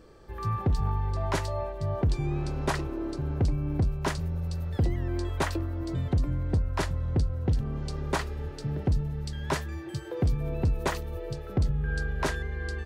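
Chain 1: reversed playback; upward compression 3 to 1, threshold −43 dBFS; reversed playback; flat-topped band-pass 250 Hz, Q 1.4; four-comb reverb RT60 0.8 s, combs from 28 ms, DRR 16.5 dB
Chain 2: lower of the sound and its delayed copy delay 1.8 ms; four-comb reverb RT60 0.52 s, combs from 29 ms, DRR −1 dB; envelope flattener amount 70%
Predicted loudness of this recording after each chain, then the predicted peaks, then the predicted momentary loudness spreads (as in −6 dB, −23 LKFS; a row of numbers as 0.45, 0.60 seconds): −39.5, −25.0 LKFS; −19.0, −10.5 dBFS; 9, 3 LU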